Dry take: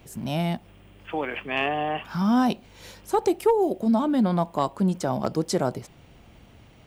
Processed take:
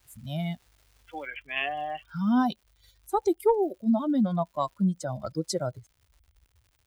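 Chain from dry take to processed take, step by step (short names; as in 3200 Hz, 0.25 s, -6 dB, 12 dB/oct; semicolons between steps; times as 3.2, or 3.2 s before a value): per-bin expansion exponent 2; crackle 570/s -51 dBFS, from 1.26 s 140/s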